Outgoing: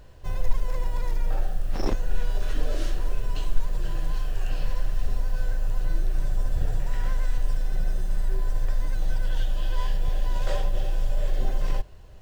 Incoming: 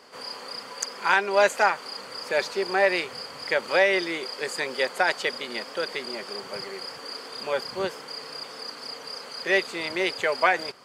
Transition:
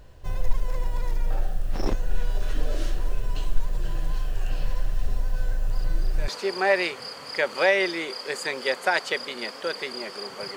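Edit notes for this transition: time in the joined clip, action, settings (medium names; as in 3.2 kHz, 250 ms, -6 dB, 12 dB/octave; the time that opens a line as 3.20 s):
outgoing
5.71 s: add incoming from 1.84 s 0.57 s -14.5 dB
6.28 s: go over to incoming from 2.41 s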